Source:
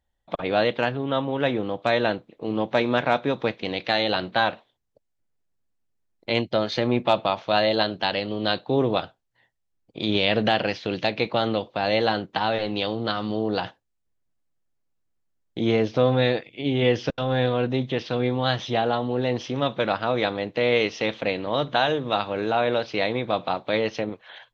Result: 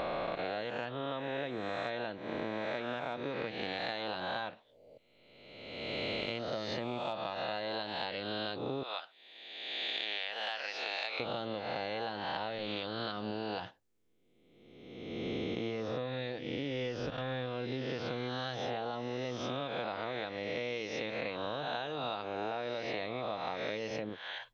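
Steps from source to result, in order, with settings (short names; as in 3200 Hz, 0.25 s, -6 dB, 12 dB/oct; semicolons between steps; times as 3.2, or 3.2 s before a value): spectral swells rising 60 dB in 1.53 s; 8.83–11.2 HPF 980 Hz 12 dB/oct; compressor 16:1, threshold -32 dBFS, peak gain reduction 19.5 dB; gain -1 dB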